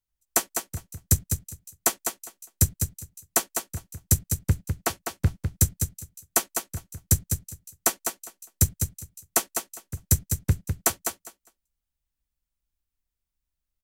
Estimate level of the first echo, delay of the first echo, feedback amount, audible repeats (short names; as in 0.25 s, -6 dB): -6.5 dB, 0.202 s, 17%, 2